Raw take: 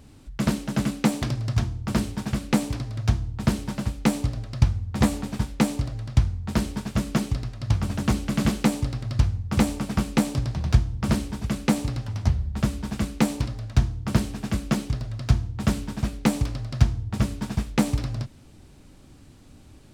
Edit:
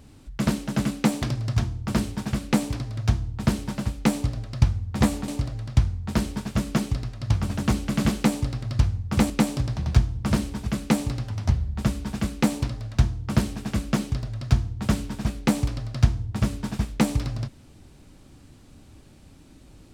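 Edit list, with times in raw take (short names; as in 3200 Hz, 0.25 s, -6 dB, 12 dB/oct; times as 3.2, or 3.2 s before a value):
5.28–5.68 cut
9.7–10.08 cut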